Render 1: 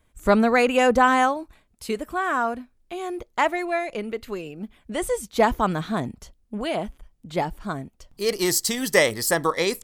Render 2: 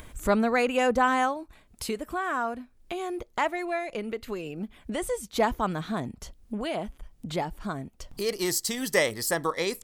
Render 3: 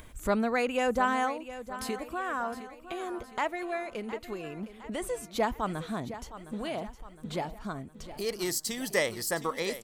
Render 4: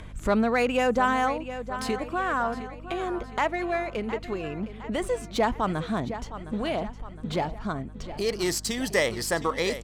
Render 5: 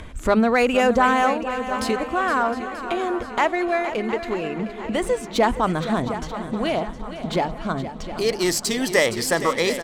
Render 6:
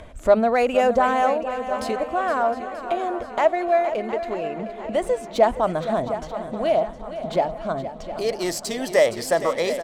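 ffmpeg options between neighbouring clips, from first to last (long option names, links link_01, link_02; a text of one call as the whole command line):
ffmpeg -i in.wav -af "acompressor=mode=upward:threshold=-21dB:ratio=2.5,volume=-5.5dB" out.wav
ffmpeg -i in.wav -af "aecho=1:1:712|1424|2136|2848|3560:0.211|0.108|0.055|0.028|0.0143,volume=-4dB" out.wav
ffmpeg -i in.wav -filter_complex "[0:a]asplit=2[link_01][link_02];[link_02]alimiter=limit=-23dB:level=0:latency=1:release=31,volume=0.5dB[link_03];[link_01][link_03]amix=inputs=2:normalize=0,adynamicsmooth=sensitivity=5.5:basefreq=5400,aeval=exprs='val(0)+0.00794*(sin(2*PI*50*n/s)+sin(2*PI*2*50*n/s)/2+sin(2*PI*3*50*n/s)/3+sin(2*PI*4*50*n/s)/4+sin(2*PI*5*50*n/s)/5)':channel_layout=same" out.wav
ffmpeg -i in.wav -filter_complex "[0:a]bandreject=frequency=50:width_type=h:width=6,bandreject=frequency=100:width_type=h:width=6,bandreject=frequency=150:width_type=h:width=6,bandreject=frequency=200:width_type=h:width=6,asplit=2[link_01][link_02];[link_02]aecho=0:1:467|934|1401|1868|2335|2802:0.251|0.133|0.0706|0.0374|0.0198|0.0105[link_03];[link_01][link_03]amix=inputs=2:normalize=0,volume=5.5dB" out.wav
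ffmpeg -i in.wav -af "equalizer=frequency=630:width=2.4:gain=13,volume=-6dB" out.wav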